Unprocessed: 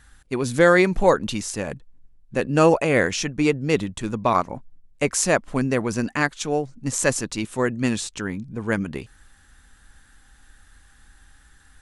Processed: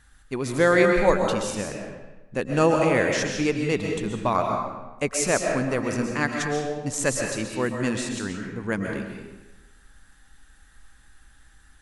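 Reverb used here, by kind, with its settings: digital reverb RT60 1.1 s, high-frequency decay 0.8×, pre-delay 90 ms, DRR 2 dB; gain -4 dB

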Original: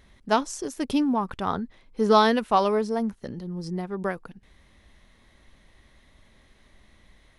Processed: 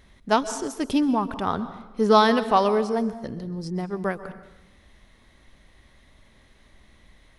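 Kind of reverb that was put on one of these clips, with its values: plate-style reverb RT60 0.98 s, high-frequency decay 0.75×, pre-delay 0.115 s, DRR 13 dB; gain +1.5 dB

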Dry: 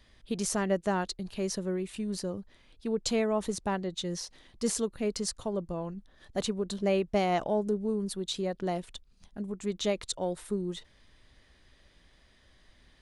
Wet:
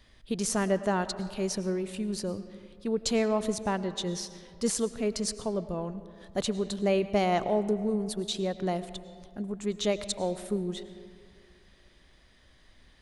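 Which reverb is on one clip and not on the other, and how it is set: digital reverb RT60 2.2 s, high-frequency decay 0.5×, pre-delay 65 ms, DRR 13 dB; gain +1.5 dB

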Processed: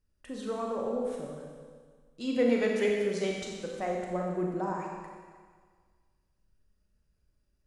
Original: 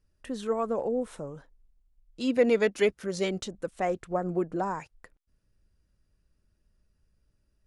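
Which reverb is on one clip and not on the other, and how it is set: Schroeder reverb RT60 1.7 s, combs from 30 ms, DRR -1 dB; gain -6 dB

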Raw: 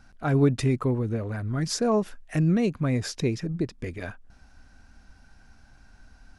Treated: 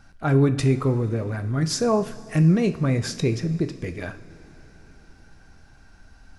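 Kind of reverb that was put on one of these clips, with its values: two-slope reverb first 0.42 s, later 4.5 s, from -18 dB, DRR 8 dB; gain +2.5 dB

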